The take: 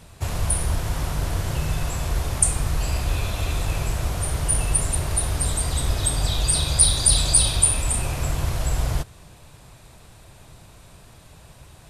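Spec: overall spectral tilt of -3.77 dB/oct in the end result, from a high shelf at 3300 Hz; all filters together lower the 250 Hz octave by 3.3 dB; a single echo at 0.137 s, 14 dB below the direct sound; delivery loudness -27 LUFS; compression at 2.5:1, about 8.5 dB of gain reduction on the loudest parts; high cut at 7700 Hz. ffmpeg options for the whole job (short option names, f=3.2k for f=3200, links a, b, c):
-af "lowpass=7.7k,equalizer=f=250:t=o:g=-6.5,highshelf=f=3.3k:g=-4.5,acompressor=threshold=-30dB:ratio=2.5,aecho=1:1:137:0.2,volume=5.5dB"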